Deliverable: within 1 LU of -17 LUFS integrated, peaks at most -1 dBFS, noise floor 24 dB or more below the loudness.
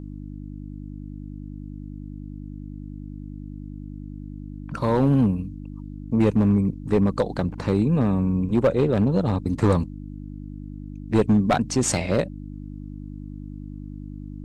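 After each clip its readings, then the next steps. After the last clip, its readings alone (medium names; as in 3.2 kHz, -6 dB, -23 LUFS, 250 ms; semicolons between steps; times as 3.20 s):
clipped samples 0.9%; clipping level -12.0 dBFS; hum 50 Hz; highest harmonic 300 Hz; hum level -33 dBFS; loudness -22.0 LUFS; peak level -12.0 dBFS; loudness target -17.0 LUFS
-> clip repair -12 dBFS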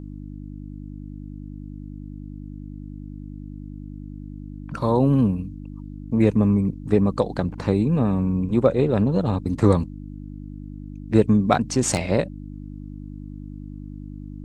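clipped samples 0.0%; hum 50 Hz; highest harmonic 300 Hz; hum level -33 dBFS
-> de-hum 50 Hz, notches 6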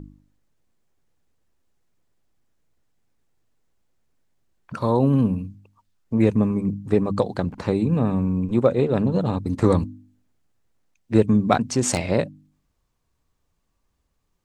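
hum not found; loudness -21.5 LUFS; peak level -3.0 dBFS; loudness target -17.0 LUFS
-> trim +4.5 dB; peak limiter -1 dBFS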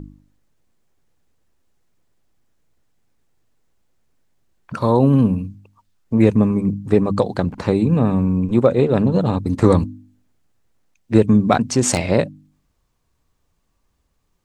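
loudness -17.5 LUFS; peak level -1.0 dBFS; noise floor -68 dBFS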